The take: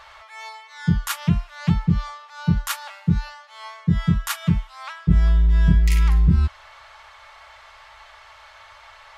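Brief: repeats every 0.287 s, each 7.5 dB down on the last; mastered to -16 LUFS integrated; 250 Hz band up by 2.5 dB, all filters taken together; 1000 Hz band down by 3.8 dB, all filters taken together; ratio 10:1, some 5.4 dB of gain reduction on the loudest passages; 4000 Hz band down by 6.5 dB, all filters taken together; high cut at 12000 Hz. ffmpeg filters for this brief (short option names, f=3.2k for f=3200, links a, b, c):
-af "lowpass=12k,equalizer=f=250:t=o:g=5,equalizer=f=1k:t=o:g=-4.5,equalizer=f=4k:t=o:g=-8.5,acompressor=threshold=-15dB:ratio=10,aecho=1:1:287|574|861|1148|1435:0.422|0.177|0.0744|0.0312|0.0131,volume=8.5dB"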